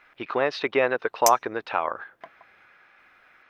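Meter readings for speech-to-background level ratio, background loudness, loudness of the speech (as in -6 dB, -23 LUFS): 3.0 dB, -28.0 LUFS, -25.0 LUFS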